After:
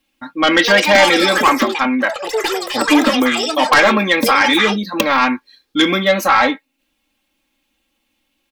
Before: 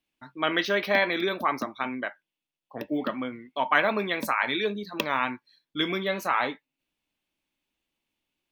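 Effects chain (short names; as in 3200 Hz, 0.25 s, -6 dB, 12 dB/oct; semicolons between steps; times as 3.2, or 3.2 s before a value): comb 3.7 ms, depth 82%; in parallel at -6 dB: sine folder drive 11 dB, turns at -4.5 dBFS; on the sum: echoes that change speed 0.395 s, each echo +7 st, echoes 3, each echo -6 dB; gain +1 dB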